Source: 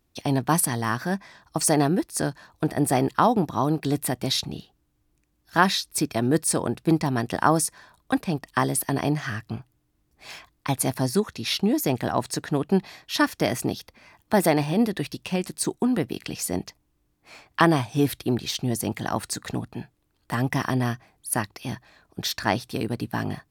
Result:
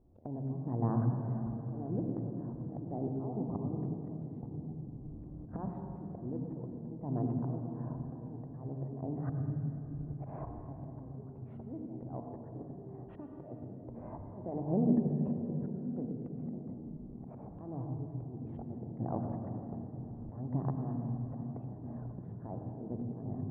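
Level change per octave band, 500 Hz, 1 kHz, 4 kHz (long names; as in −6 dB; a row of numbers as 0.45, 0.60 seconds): −15.5 dB, −21.0 dB, below −40 dB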